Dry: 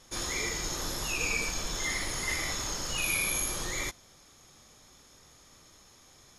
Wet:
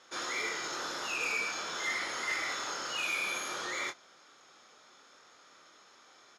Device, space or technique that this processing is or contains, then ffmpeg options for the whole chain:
intercom: -filter_complex "[0:a]highpass=380,lowpass=4.7k,equalizer=f=1.4k:t=o:w=0.36:g=9,asoftclip=type=tanh:threshold=-27.5dB,asplit=2[a][b];[b]adelay=25,volume=-8dB[c];[a][c]amix=inputs=2:normalize=0"

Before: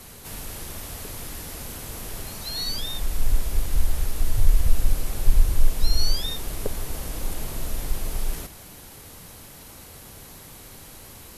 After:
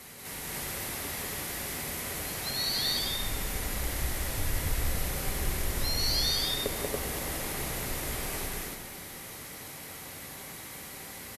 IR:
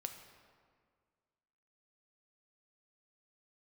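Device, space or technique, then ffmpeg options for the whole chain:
stadium PA: -filter_complex "[0:a]highpass=f=160:p=1,equalizer=f=2k:t=o:w=0.4:g=7,aecho=1:1:186.6|282.8:0.891|0.891[a];[1:a]atrim=start_sample=2205[b];[a][b]afir=irnorm=-1:irlink=0"

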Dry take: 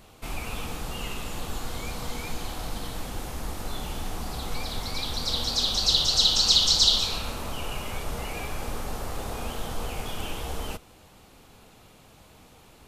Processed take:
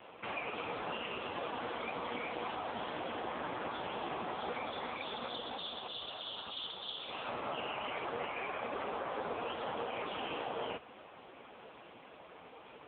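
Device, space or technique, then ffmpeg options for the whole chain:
voicemail: -af "highpass=330,lowpass=2.9k,bandreject=f=47.72:t=h:w=4,bandreject=f=95.44:t=h:w=4,bandreject=f=143.16:t=h:w=4,acompressor=threshold=-39dB:ratio=8,volume=8dB" -ar 8000 -c:a libopencore_amrnb -b:a 5150

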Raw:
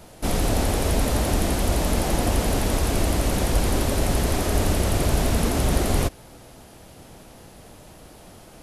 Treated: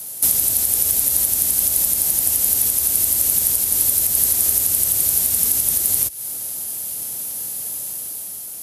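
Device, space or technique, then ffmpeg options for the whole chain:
FM broadcast chain: -filter_complex "[0:a]highpass=80,dynaudnorm=f=120:g=11:m=4dB,acrossover=split=130|1400[a][b][c];[a]acompressor=threshold=-31dB:ratio=4[d];[b]acompressor=threshold=-33dB:ratio=4[e];[c]acompressor=threshold=-35dB:ratio=4[f];[d][e][f]amix=inputs=3:normalize=0,aemphasis=mode=production:type=75fm,alimiter=limit=-13dB:level=0:latency=1:release=228,asoftclip=type=hard:threshold=-15.5dB,lowpass=f=15k:w=0.5412,lowpass=f=15k:w=1.3066,aemphasis=mode=production:type=75fm,volume=-4dB"

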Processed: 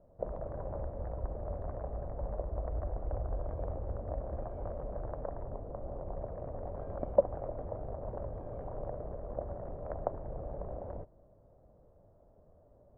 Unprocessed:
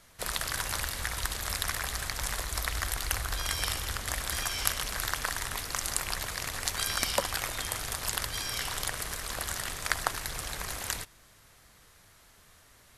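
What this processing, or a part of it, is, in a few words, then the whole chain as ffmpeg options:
under water: -filter_complex "[0:a]asettb=1/sr,asplit=3[a][b][c];[a]atrim=end=5.434[d];[b]atrim=start=5.43:end=6.17,asetpts=PTS-STARTPTS,afade=t=in:d=0.004:c=qsin,afade=t=out:st=0.736:d=0.004:c=qsin,lowpass=f=1.3k:p=1[e];[c]atrim=start=6.166[f];[d][e]acrossfade=d=0.004:c1=hsin:c2=qsin[g];[g][f]acrossfade=d=0.004:c1=qsin:c2=hsin,lowpass=f=690:w=0.5412,lowpass=f=690:w=1.3066,equalizer=f=580:t=o:w=0.48:g=10"

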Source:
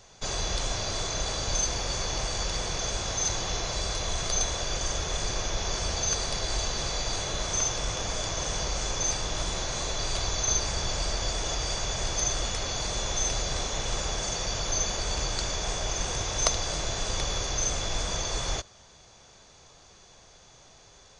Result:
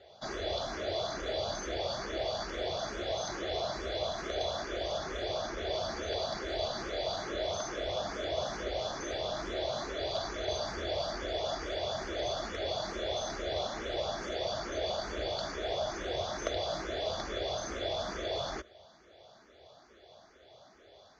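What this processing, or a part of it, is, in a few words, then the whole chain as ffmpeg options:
barber-pole phaser into a guitar amplifier: -filter_complex "[0:a]asplit=2[a][b];[b]afreqshift=2.3[c];[a][c]amix=inputs=2:normalize=1,asoftclip=type=tanh:threshold=-22dB,highpass=90,equalizer=f=110:t=q:w=4:g=-9,equalizer=f=160:t=q:w=4:g=-9,equalizer=f=360:t=q:w=4:g=5,equalizer=f=630:t=q:w=4:g=9,equalizer=f=980:t=q:w=4:g=-6,equalizer=f=2.6k:t=q:w=4:g=-9,lowpass=f=4.1k:w=0.5412,lowpass=f=4.1k:w=1.3066,volume=1dB"

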